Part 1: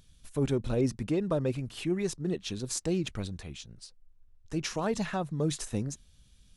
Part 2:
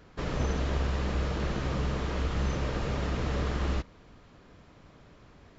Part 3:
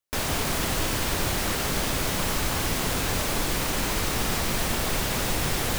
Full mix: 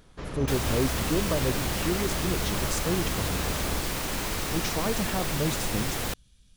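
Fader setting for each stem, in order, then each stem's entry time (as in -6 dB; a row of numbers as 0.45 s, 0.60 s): +0.5 dB, -4.0 dB, -4.0 dB; 0.00 s, 0.00 s, 0.35 s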